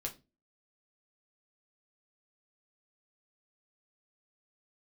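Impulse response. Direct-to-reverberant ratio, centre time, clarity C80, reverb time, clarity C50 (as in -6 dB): 0.5 dB, 11 ms, 22.5 dB, 0.25 s, 15.0 dB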